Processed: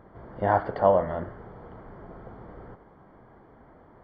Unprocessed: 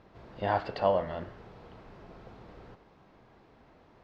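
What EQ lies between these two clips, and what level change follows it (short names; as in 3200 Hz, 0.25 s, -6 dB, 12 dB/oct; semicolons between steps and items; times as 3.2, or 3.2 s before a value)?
polynomial smoothing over 41 samples; +6.0 dB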